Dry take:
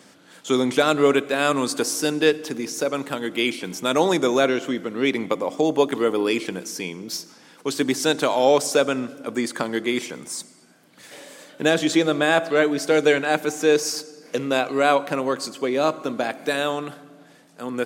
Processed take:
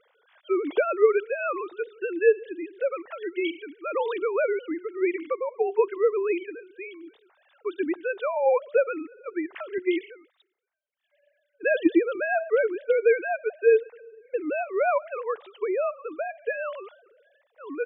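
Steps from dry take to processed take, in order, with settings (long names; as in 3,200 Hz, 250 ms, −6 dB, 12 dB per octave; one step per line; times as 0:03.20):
three sine waves on the formant tracks
0:09.78–0:11.92: multiband upward and downward expander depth 70%
level −4.5 dB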